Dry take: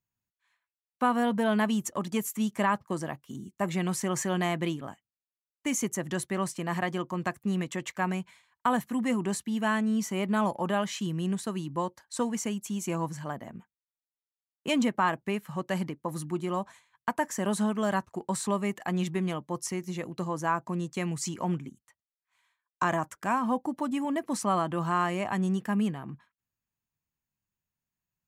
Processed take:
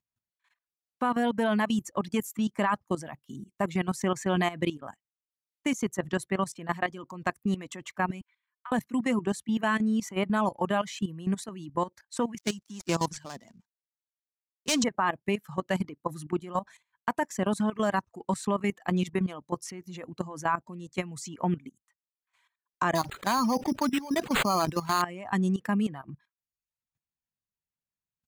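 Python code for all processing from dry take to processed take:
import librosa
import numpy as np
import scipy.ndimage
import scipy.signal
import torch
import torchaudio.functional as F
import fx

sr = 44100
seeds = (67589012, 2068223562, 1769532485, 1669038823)

y = fx.chain(x, sr, fx.highpass(hz=1200.0, slope=24),
    fx.spacing_loss(db_at_10k=32), at=(8.21, 8.72))
y = fx.chain(y, sr, fx.dead_time(dead_ms=0.12),
    fx.peak_eq(hz=6100.0, db=14.0, octaves=1.6),
    fx.band_widen(depth_pct=70), at=(12.38, 14.84))
y = fx.chain(y, sr, fx.high_shelf(hz=3900.0, db=11.0),
    fx.sample_hold(seeds[0], rate_hz=5500.0, jitter_pct=0),
    fx.sustainer(db_per_s=39.0), at=(22.95, 25.02))
y = fx.dereverb_blind(y, sr, rt60_s=0.67)
y = fx.high_shelf(y, sr, hz=9300.0, db=-6.5)
y = fx.level_steps(y, sr, step_db=15)
y = F.gain(torch.from_numpy(y), 5.0).numpy()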